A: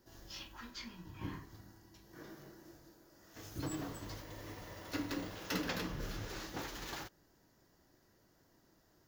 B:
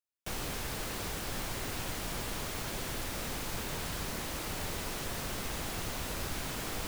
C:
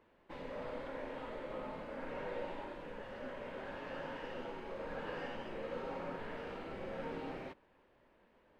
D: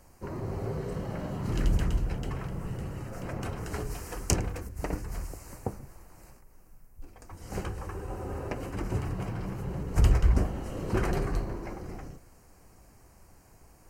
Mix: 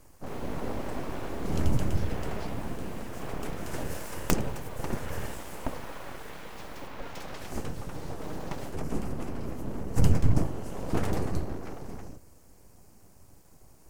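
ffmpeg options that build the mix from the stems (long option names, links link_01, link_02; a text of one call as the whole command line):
ffmpeg -i stem1.wav -i stem2.wav -i stem3.wav -i stem4.wav -filter_complex "[0:a]adelay=1650,volume=-6dB[link_01];[1:a]volume=-16dB[link_02];[2:a]volume=3dB[link_03];[3:a]equalizer=frequency=1600:width=0.54:gain=-7.5,volume=3dB[link_04];[link_01][link_02][link_03][link_04]amix=inputs=4:normalize=0,aeval=exprs='abs(val(0))':channel_layout=same" out.wav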